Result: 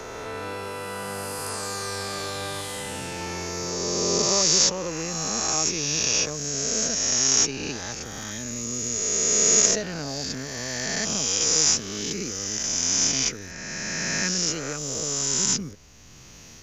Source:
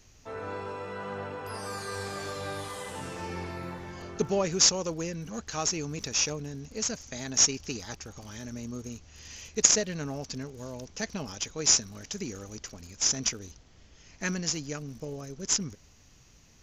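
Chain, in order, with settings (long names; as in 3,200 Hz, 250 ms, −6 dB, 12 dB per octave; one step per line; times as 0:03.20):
peak hold with a rise ahead of every peak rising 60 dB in 2.49 s
0:02.61–0:03.21: parametric band 1,100 Hz −11 dB 0.3 octaves
0:06.51–0:08.03: low-pass filter 9,600 Hz 12 dB per octave
multiband upward and downward compressor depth 40%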